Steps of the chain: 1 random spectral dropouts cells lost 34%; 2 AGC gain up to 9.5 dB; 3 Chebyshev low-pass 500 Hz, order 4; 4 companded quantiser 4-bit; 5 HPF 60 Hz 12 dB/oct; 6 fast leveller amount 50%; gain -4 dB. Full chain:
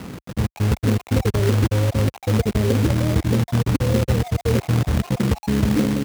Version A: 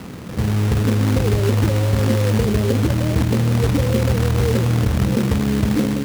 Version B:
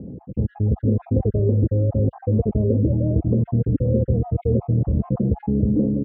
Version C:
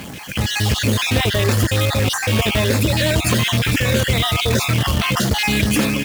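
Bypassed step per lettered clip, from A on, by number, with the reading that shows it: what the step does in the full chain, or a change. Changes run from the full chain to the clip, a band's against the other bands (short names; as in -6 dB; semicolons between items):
1, crest factor change -1.5 dB; 4, distortion -14 dB; 3, 4 kHz band +10.0 dB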